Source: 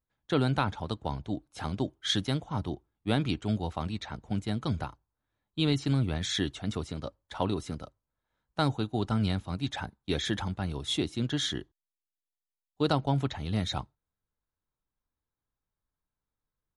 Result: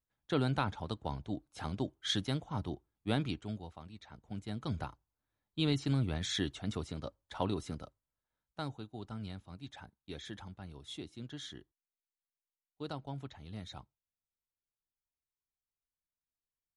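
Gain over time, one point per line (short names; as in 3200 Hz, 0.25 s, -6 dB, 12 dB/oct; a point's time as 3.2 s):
3.19 s -5 dB
3.85 s -17.5 dB
4.85 s -4.5 dB
7.8 s -4.5 dB
8.87 s -15 dB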